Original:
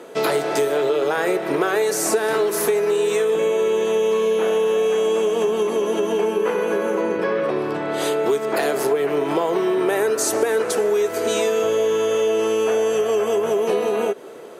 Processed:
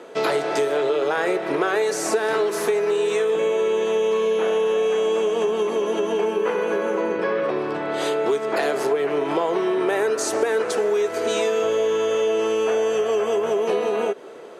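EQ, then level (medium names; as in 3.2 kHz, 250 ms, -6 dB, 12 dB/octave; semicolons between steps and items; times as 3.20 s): distance through air 54 m; bass shelf 270 Hz -5.5 dB; 0.0 dB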